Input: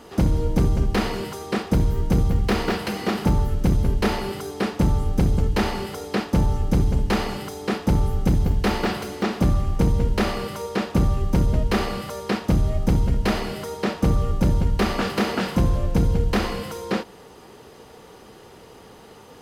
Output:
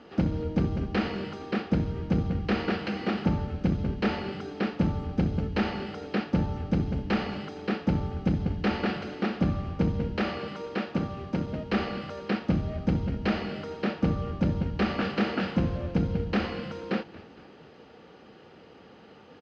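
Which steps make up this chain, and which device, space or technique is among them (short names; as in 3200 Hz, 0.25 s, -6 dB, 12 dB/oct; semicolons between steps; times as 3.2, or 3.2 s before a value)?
10.16–11.72 HPF 210 Hz 6 dB/oct; frequency-shifting delay pedal into a guitar cabinet (frequency-shifting echo 0.23 s, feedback 53%, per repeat -120 Hz, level -18 dB; speaker cabinet 100–4100 Hz, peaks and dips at 120 Hz -6 dB, 410 Hz -5 dB, 670 Hz -3 dB, 1000 Hz -9 dB, 2000 Hz -3 dB, 3600 Hz -6 dB); gain -2.5 dB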